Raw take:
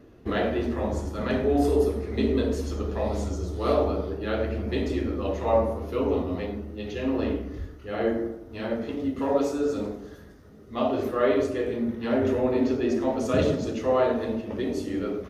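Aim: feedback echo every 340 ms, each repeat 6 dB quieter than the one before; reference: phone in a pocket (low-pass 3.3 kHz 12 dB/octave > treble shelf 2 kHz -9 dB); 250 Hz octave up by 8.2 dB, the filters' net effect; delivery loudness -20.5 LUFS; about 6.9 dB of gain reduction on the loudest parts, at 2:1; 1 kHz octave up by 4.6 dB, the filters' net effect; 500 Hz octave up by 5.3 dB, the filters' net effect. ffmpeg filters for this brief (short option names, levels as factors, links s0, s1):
-af "equalizer=f=250:t=o:g=8.5,equalizer=f=500:t=o:g=3,equalizer=f=1000:t=o:g=6.5,acompressor=threshold=0.0631:ratio=2,lowpass=3300,highshelf=f=2000:g=-9,aecho=1:1:340|680|1020|1360|1700|2040:0.501|0.251|0.125|0.0626|0.0313|0.0157,volume=1.58"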